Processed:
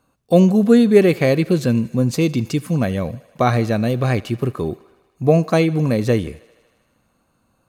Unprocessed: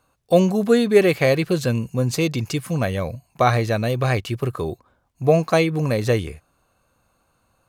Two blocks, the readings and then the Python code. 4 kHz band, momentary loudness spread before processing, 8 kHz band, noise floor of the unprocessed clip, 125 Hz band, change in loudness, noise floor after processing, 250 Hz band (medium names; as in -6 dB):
-1.5 dB, 10 LU, -1.5 dB, -67 dBFS, +3.0 dB, +3.0 dB, -65 dBFS, +6.0 dB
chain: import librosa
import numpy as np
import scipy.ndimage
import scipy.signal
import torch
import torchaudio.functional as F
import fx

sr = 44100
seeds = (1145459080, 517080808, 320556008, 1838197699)

p1 = fx.peak_eq(x, sr, hz=230.0, db=9.0, octaves=1.4)
p2 = p1 + fx.echo_thinned(p1, sr, ms=78, feedback_pct=76, hz=300.0, wet_db=-22, dry=0)
y = p2 * librosa.db_to_amplitude(-1.5)